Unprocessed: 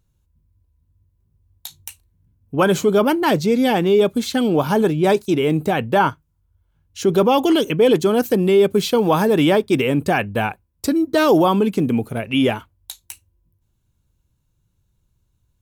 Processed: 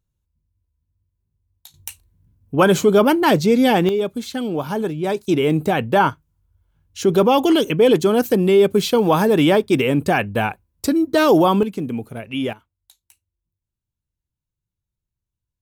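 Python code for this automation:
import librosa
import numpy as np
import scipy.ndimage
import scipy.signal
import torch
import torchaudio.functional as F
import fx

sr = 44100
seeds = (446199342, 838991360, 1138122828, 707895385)

y = fx.gain(x, sr, db=fx.steps((0.0, -10.0), (1.74, 2.0), (3.89, -6.0), (5.27, 0.5), (11.63, -6.5), (12.53, -18.0)))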